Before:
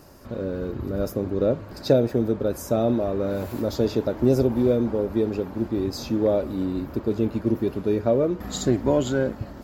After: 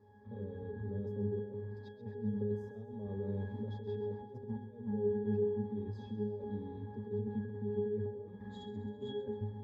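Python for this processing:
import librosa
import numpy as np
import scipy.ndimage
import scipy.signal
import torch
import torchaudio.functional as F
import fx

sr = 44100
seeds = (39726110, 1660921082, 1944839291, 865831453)

y = fx.low_shelf(x, sr, hz=170.0, db=-7.5)
y = fx.over_compress(y, sr, threshold_db=-27.0, ratio=-0.5)
y = fx.octave_resonator(y, sr, note='G#', decay_s=0.51)
y = fx.echo_feedback(y, sr, ms=132, feedback_pct=55, wet_db=-12.0)
y = y * librosa.db_to_amplitude(4.5)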